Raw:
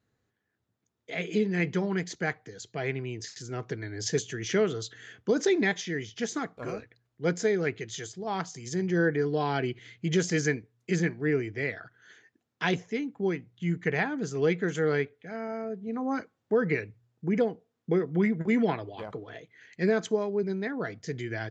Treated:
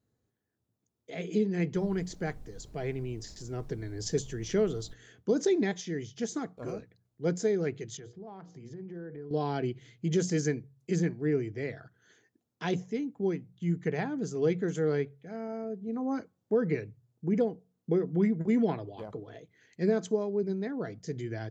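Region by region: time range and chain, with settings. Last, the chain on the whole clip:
1.74–4.93 notch 6400 Hz, Q 18 + added noise brown -47 dBFS
7.97–9.31 LPF 2100 Hz + notches 60/120/180/240/300/360/420/480/540/600 Hz + compressor 4:1, threshold -40 dBFS
whole clip: bell 2000 Hz -10.5 dB 2.3 oct; de-hum 45.66 Hz, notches 4

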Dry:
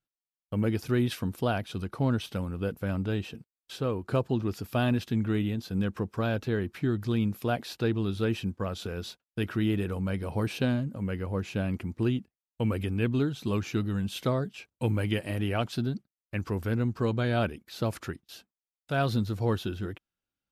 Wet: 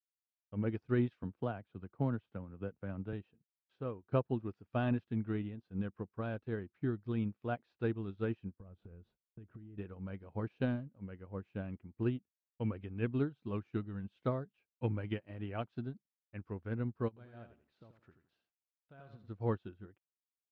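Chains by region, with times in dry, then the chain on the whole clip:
1.23–3.13 LPF 2700 Hz 6 dB/oct + three-band squash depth 40%
8.6–9.78 tilt -3.5 dB/oct + compressor 8:1, threshold -30 dBFS
17.08–19.28 compressor 8:1, threshold -32 dBFS + lo-fi delay 85 ms, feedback 35%, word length 9-bit, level -4 dB
whole clip: LPF 2200 Hz 12 dB/oct; upward expander 2.5:1, over -39 dBFS; gain -3.5 dB

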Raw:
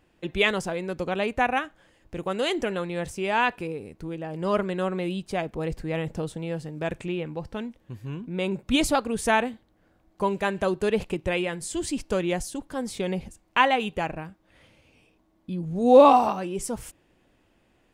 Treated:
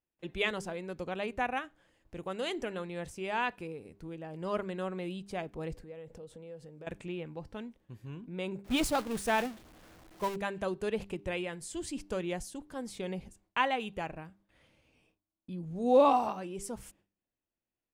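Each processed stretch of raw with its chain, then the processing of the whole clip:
5.74–6.87 compressor 12:1, threshold -38 dBFS + bell 490 Hz +11 dB 0.31 oct
8.64–10.36 zero-crossing step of -24.5 dBFS + expander -22 dBFS
whole clip: gate with hold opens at -52 dBFS; de-hum 99.4 Hz, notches 4; gain -9 dB

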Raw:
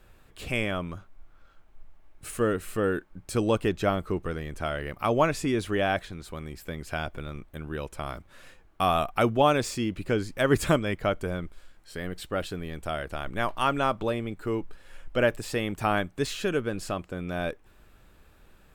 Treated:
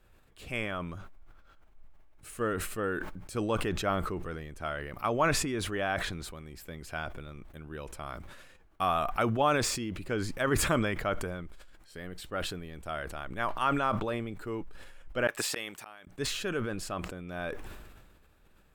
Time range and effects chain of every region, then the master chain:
15.27–16.07 HPF 1400 Hz 6 dB/oct + flipped gate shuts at -27 dBFS, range -32 dB
whole clip: dynamic EQ 1300 Hz, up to +6 dB, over -38 dBFS, Q 0.97; sustainer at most 37 dB/s; gain -8 dB

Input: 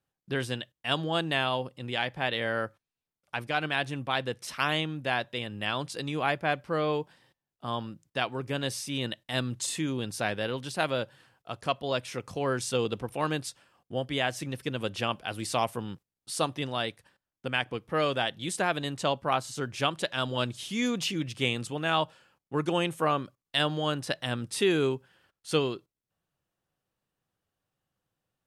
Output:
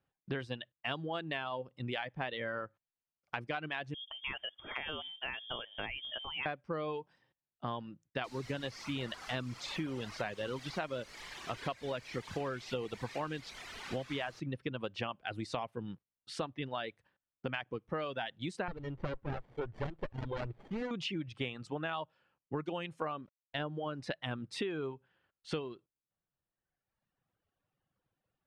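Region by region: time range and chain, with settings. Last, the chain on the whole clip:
3.94–6.46 compressor 5:1, threshold -33 dBFS + bands offset in time lows, highs 0.17 s, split 230 Hz + inverted band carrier 3400 Hz
8.24–14.4 LPF 6500 Hz 24 dB/oct + requantised 6-bit, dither triangular
18.68–20.91 high shelf 5700 Hz -11 dB + comb 2.2 ms, depth 53% + running maximum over 33 samples
23.21–24.01 LPF 1200 Hz 6 dB/oct + sample gate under -54 dBFS
whole clip: reverb removal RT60 1.3 s; LPF 3000 Hz 12 dB/oct; compressor 10:1, threshold -36 dBFS; gain +2 dB

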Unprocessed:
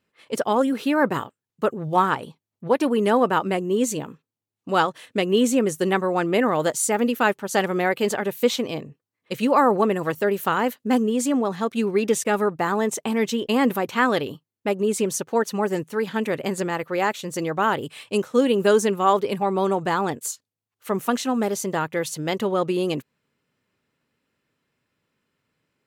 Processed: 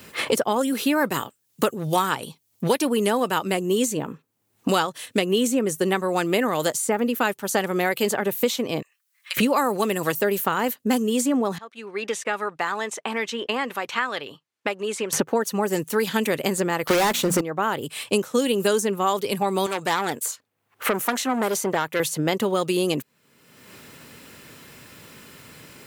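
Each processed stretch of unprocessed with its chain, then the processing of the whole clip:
8.82–9.37 HPF 1400 Hz 24 dB/oct + compressor 2.5:1, threshold -52 dBFS
11.58–15.13 LPF 1600 Hz + differentiator
16.87–17.41 notches 60/120/180/240/300 Hz + sample leveller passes 5
19.66–22 low shelf 260 Hz -11.5 dB + core saturation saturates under 2000 Hz
whole clip: high shelf 6000 Hz +11.5 dB; three-band squash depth 100%; gain -2 dB

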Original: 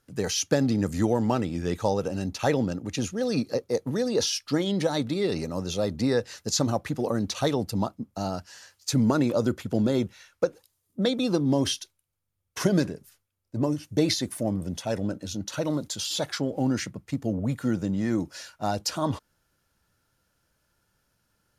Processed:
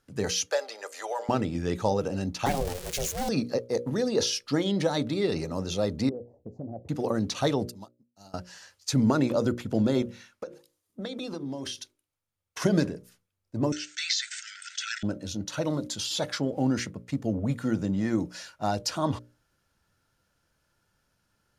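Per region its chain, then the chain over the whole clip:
0.46–1.29 steep high-pass 520 Hz + comb 5 ms, depth 34%
2.46–3.29 switching spikes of -19 dBFS + ring modulator 270 Hz
6.09–6.89 elliptic low-pass 720 Hz, stop band 50 dB + compressor 3:1, threshold -36 dBFS
7.69–8.34 pre-emphasis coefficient 0.8 + upward expander 2.5:1, over -49 dBFS
10.02–12.62 low shelf 190 Hz -8 dB + notches 50/100/150/200/250/300/350/400 Hz + compressor, threshold -31 dBFS
13.72–15.03 brick-wall FIR band-pass 1300–8400 Hz + fast leveller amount 50%
whole clip: high shelf 12000 Hz -10.5 dB; notches 60/120/180/240/300/360/420/480/540/600 Hz

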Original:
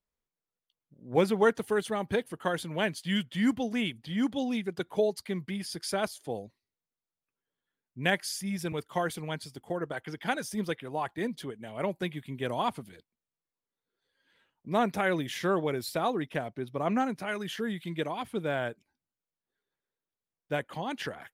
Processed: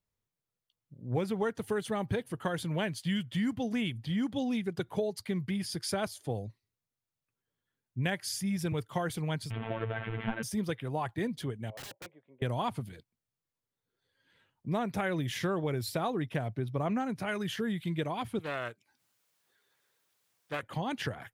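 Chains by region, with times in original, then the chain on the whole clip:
9.5–10.43 delta modulation 16 kbps, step -33.5 dBFS + comb 4.4 ms, depth 62% + robotiser 112 Hz
11.7–12.42 ladder band-pass 590 Hz, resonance 65% + wrapped overs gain 40 dB
18.39–20.63 HPF 1000 Hz 6 dB/oct + upward compressor, threshold -58 dBFS + Doppler distortion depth 0.28 ms
whole clip: bell 110 Hz +14 dB 0.91 oct; compressor 6:1, threshold -28 dBFS

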